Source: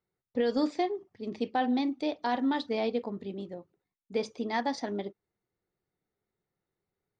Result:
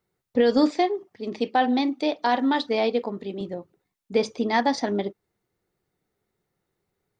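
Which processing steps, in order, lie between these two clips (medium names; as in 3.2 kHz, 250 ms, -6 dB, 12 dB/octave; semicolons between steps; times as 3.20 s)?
0.71–3.41 s: high-pass 290 Hz 6 dB/octave; trim +8.5 dB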